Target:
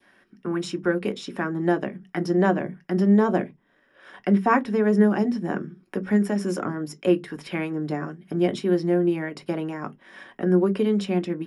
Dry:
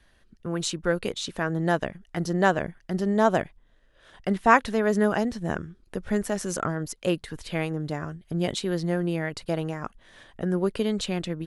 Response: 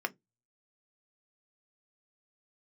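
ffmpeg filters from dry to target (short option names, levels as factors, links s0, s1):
-filter_complex "[0:a]acrossover=split=410[s0][s1];[s1]acompressor=threshold=0.00562:ratio=1.5[s2];[s0][s2]amix=inputs=2:normalize=0,adynamicequalizer=threshold=0.00316:dfrequency=1600:dqfactor=1.3:tfrequency=1600:tqfactor=1.3:attack=5:release=100:ratio=0.375:range=2.5:mode=cutabove:tftype=bell[s3];[1:a]atrim=start_sample=2205,afade=t=out:st=0.22:d=0.01,atrim=end_sample=10143[s4];[s3][s4]afir=irnorm=-1:irlink=0,volume=1.33"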